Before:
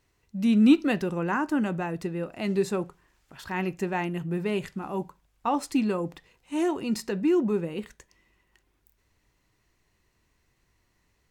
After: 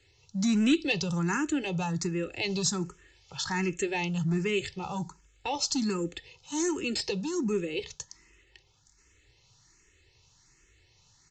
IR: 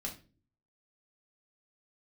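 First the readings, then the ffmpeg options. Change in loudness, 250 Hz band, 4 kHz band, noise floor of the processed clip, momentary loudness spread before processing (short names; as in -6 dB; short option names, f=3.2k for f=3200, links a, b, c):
-3.0 dB, -4.5 dB, +7.5 dB, -65 dBFS, 13 LU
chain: -filter_complex "[0:a]equalizer=f=140:w=0.57:g=9.5,aecho=1:1:2.3:0.61,acrossover=split=250|3000[a][b][c];[b]acompressor=threshold=-36dB:ratio=2[d];[a][d][c]amix=inputs=3:normalize=0,acrossover=split=300|4500[e][f][g];[e]volume=23.5dB,asoftclip=hard,volume=-23.5dB[h];[h][f][g]amix=inputs=3:normalize=0,crystalizer=i=8:c=0,aresample=16000,asoftclip=type=tanh:threshold=-16dB,aresample=44100,asplit=2[i][j];[j]afreqshift=1.3[k];[i][k]amix=inputs=2:normalize=1"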